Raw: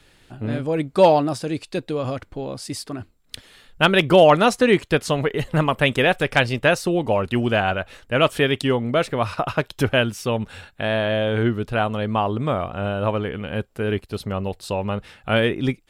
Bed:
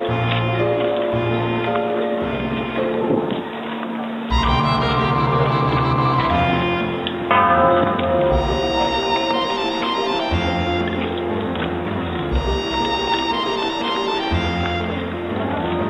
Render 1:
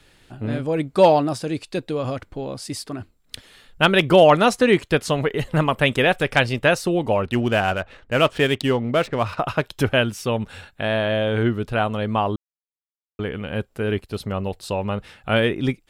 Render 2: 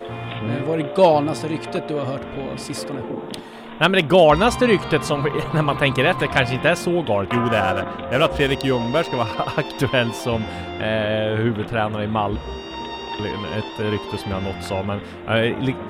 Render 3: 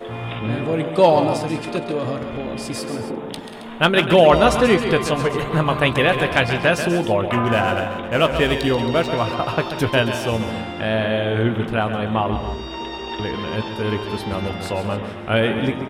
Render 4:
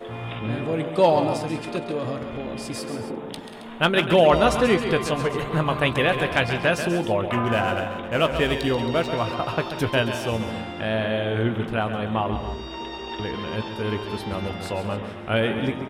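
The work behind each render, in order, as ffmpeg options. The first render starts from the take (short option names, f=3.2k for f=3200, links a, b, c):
-filter_complex "[0:a]asettb=1/sr,asplit=3[a][b][c];[a]atrim=end=7.254[d];[b]atrim=start=7.25:end=9.4,asetpts=PTS-STARTPTS,afade=t=in:d=0.004:c=qsin,afade=t=out:st=2.146:d=0.004:c=qsin,adynamicsmooth=sensitivity=8:basefreq=2.7k[e];[c]atrim=start=9.396[f];[d][e]acrossfade=d=0.004:c1=hsin:c2=qsin[g];[g][f]acrossfade=d=0.004:c1=qsin:c2=hsin,asplit=3[h][i][j];[h]atrim=end=12.36,asetpts=PTS-STARTPTS,afade=t=out:st=12.356:d=0.004:c=hsin[k];[i]atrim=start=12.36:end=13.19,asetpts=PTS-STARTPTS,volume=0[l];[j]atrim=start=13.19,asetpts=PTS-STARTPTS,afade=t=in:d=0.004:c=hsin[m];[k][l][m]concat=n=3:v=0:a=1"
-filter_complex "[1:a]volume=-10.5dB[a];[0:a][a]amix=inputs=2:normalize=0"
-filter_complex "[0:a]asplit=2[a][b];[b]adelay=18,volume=-13dB[c];[a][c]amix=inputs=2:normalize=0,aecho=1:1:136|185|190|271:0.335|0.126|0.119|0.211"
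-af "volume=-4dB"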